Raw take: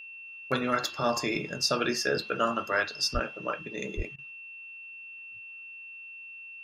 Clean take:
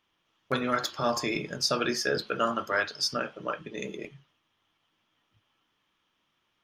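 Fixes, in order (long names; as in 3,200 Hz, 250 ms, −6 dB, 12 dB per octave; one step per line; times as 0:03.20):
notch filter 2,700 Hz, Q 30
0:03.13–0:03.25: high-pass filter 140 Hz 24 dB per octave
0:03.96–0:04.08: high-pass filter 140 Hz 24 dB per octave
repair the gap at 0:04.16, 23 ms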